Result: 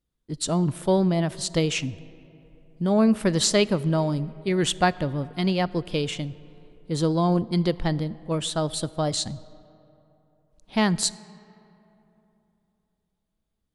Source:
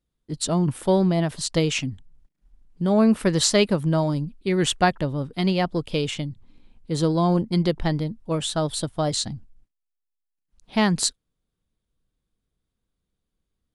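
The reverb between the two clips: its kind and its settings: algorithmic reverb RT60 3.2 s, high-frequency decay 0.5×, pre-delay 0 ms, DRR 19 dB; trim -1.5 dB

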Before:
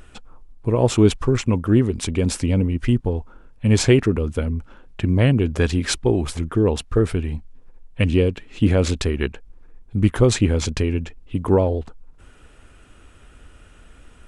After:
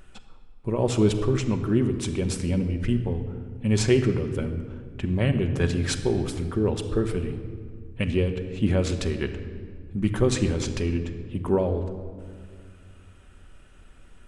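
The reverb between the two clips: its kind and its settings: simulated room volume 3400 m³, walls mixed, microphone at 1.1 m; trim -6.5 dB

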